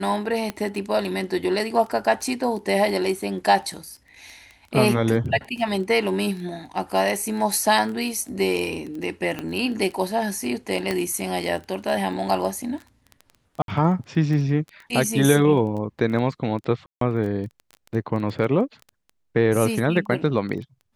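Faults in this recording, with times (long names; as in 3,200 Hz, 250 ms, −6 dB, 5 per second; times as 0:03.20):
surface crackle 11 per second −30 dBFS
0:00.50: click −13 dBFS
0:09.39: click −15 dBFS
0:10.91: click −11 dBFS
0:13.62–0:13.68: drop-out 62 ms
0:16.86–0:17.01: drop-out 153 ms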